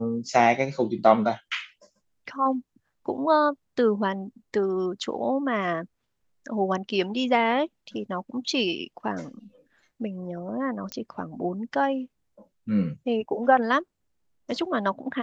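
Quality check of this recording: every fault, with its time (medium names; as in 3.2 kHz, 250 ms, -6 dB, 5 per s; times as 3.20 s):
10.92 s: pop -16 dBFS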